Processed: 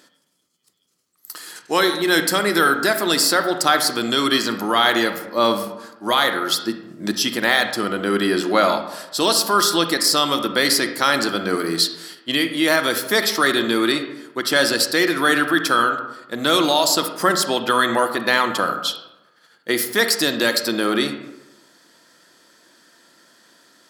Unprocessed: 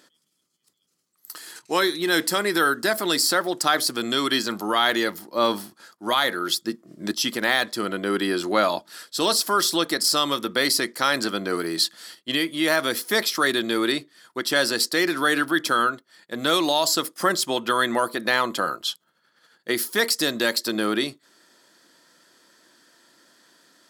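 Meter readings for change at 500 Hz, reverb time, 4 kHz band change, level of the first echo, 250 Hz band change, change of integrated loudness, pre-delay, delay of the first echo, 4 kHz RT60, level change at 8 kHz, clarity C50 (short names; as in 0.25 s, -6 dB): +4.0 dB, 0.95 s, +4.0 dB, none, +4.5 dB, +4.0 dB, 35 ms, none, 0.55 s, +3.5 dB, 8.5 dB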